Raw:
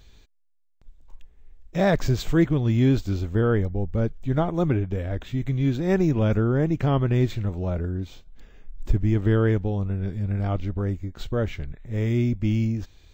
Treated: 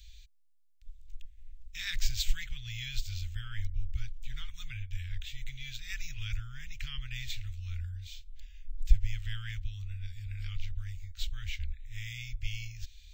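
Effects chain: inverse Chebyshev band-stop 250–630 Hz, stop band 80 dB; gain +1.5 dB

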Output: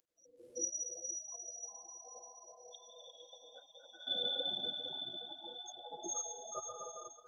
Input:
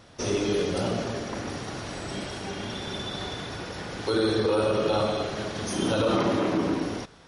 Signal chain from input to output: loudest bins only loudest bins 4; 2.08–2.75 air absorption 100 m; diffused feedback echo 0.488 s, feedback 49%, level -5 dB; spectral gate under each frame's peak -30 dB weak; differentiator; small resonant body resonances 340/490 Hz, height 16 dB, ringing for 95 ms; AGC gain up to 12.5 dB; HPF 98 Hz 24 dB/oct; 4.6–5.16 de-hum 327.8 Hz, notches 5; gain +17.5 dB; Opus 24 kbps 48000 Hz

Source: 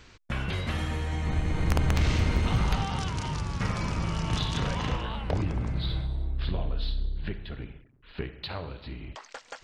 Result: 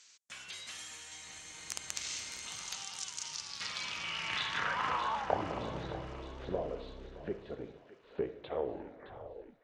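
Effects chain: tape stop at the end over 1.31 s; band-pass sweep 7000 Hz -> 500 Hz, 3.16–5.8; thinning echo 0.617 s, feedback 54%, high-pass 920 Hz, level -11 dB; gain +7 dB

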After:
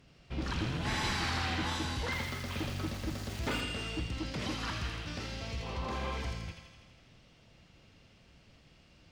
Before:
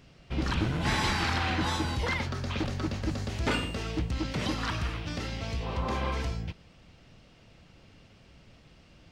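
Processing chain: added harmonics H 5 -27 dB, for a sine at -15 dBFS; thin delay 82 ms, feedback 66%, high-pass 1900 Hz, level -3 dB; reverb RT60 1.6 s, pre-delay 43 ms, DRR 11.5 dB; 2.12–3.61 sample gate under -37 dBFS; gain -7 dB

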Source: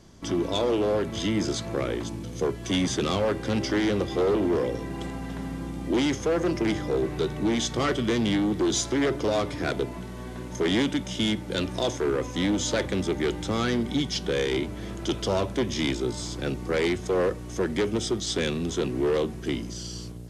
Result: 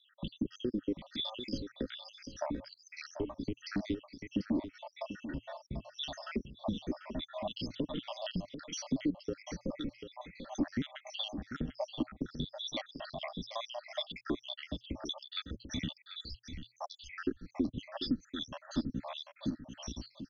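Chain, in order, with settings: random spectral dropouts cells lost 83%; steep low-pass 6000 Hz 96 dB/oct; spectral delete 16.18–16.63, 220–2700 Hz; compressor 4:1, threshold -43 dBFS, peak gain reduction 18 dB; small resonant body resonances 400/720/3600 Hz, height 12 dB, ringing for 30 ms; frequency shift -120 Hz; echo 0.741 s -10.5 dB; gain +2 dB

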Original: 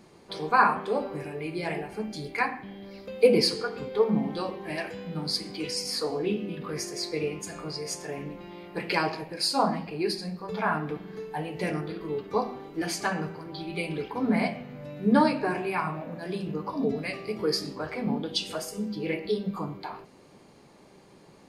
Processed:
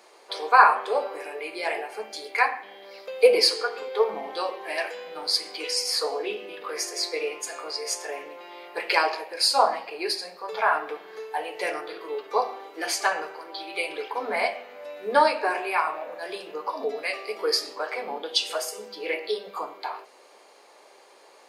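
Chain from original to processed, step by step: HPF 480 Hz 24 dB/oct; gain +5.5 dB

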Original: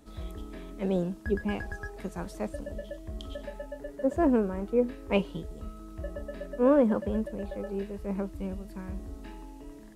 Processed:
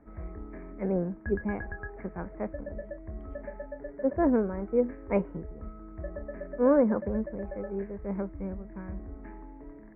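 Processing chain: Chebyshev low-pass 2200 Hz, order 6

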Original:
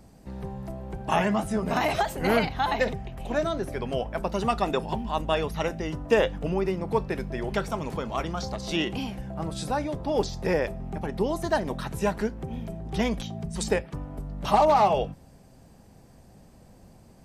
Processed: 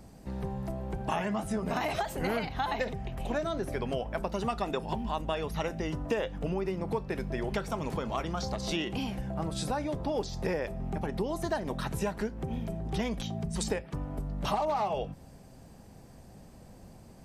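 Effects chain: compressor 4:1, threshold -30 dBFS, peak gain reduction 12 dB; gain +1 dB

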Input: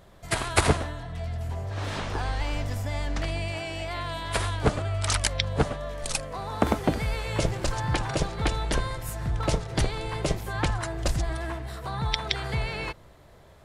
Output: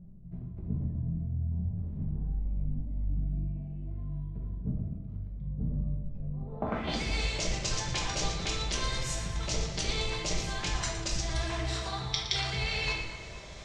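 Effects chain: band shelf 4300 Hz +8 dB 2.3 oct; reverse; compressor 6:1, threshold -35 dBFS, peak gain reduction 21 dB; reverse; low-pass sweep 180 Hz -> 6200 Hz, 6.37–6.97; on a send: split-band echo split 2300 Hz, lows 0.233 s, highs 0.116 s, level -11.5 dB; on the sum: shoebox room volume 210 m³, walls mixed, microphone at 1.2 m

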